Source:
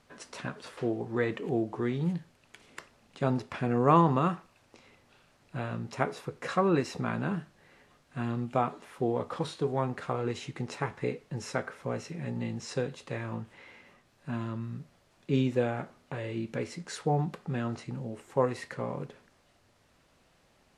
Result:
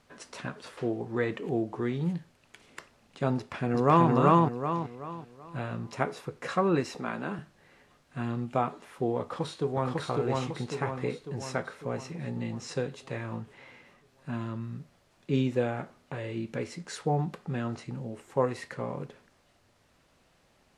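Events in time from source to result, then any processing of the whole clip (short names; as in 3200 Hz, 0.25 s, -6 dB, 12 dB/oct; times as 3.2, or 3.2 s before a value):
3.36–4.1 echo throw 0.38 s, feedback 35%, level 0 dB
6.95–7.39 HPF 240 Hz
9.21–9.92 echo throw 0.55 s, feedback 55%, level -1 dB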